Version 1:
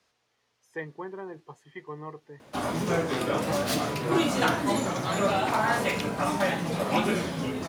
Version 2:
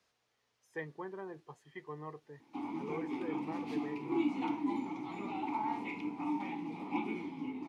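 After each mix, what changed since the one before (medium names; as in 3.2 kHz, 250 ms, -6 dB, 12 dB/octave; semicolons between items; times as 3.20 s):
speech -5.5 dB; background: add vowel filter u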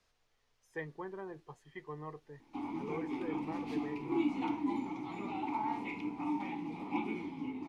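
master: remove high-pass 120 Hz 12 dB/octave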